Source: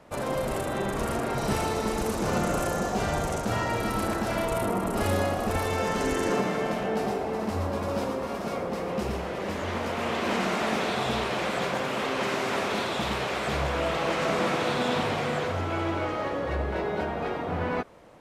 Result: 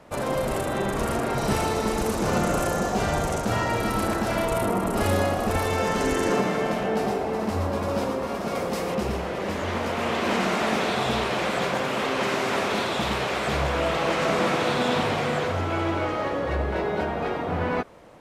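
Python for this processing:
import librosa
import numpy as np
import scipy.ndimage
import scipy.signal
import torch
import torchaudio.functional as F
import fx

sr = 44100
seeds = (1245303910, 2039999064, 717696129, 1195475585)

y = fx.high_shelf(x, sr, hz=3500.0, db=10.5, at=(8.55, 8.95))
y = y * 10.0 ** (3.0 / 20.0)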